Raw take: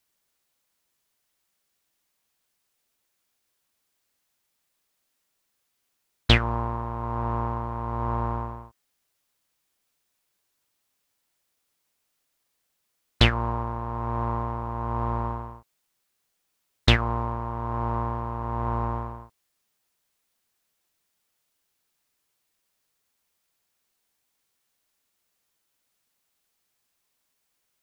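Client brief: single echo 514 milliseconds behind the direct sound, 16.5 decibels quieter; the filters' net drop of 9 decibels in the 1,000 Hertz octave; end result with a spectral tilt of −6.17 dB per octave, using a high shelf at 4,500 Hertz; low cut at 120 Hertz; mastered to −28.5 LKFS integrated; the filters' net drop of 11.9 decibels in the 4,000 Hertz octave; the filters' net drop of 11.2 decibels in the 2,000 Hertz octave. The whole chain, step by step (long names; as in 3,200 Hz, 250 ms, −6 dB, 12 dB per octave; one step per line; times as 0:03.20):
high-pass filter 120 Hz
parametric band 1,000 Hz −8 dB
parametric band 2,000 Hz −8 dB
parametric band 4,000 Hz −8.5 dB
high-shelf EQ 4,500 Hz −7 dB
single-tap delay 514 ms −16.5 dB
level +4.5 dB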